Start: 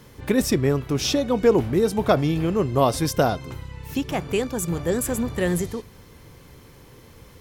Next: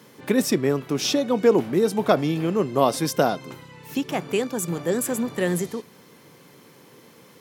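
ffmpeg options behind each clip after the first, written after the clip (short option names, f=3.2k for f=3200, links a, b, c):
-af "highpass=f=160:w=0.5412,highpass=f=160:w=1.3066"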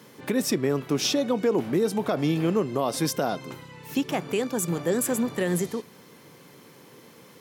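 -af "alimiter=limit=-14.5dB:level=0:latency=1:release=120"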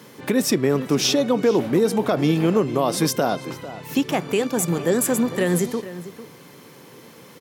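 -filter_complex "[0:a]asplit=2[a][b];[b]adelay=449,volume=-14dB,highshelf=f=4k:g=-10.1[c];[a][c]amix=inputs=2:normalize=0,volume=5dB"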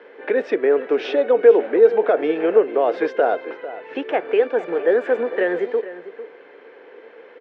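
-af "highpass=f=350:w=0.5412,highpass=f=350:w=1.3066,equalizer=f=460:t=q:w=4:g=9,equalizer=f=680:t=q:w=4:g=4,equalizer=f=1.1k:t=q:w=4:g=-6,equalizer=f=1.6k:t=q:w=4:g=7,lowpass=f=2.6k:w=0.5412,lowpass=f=2.6k:w=1.3066"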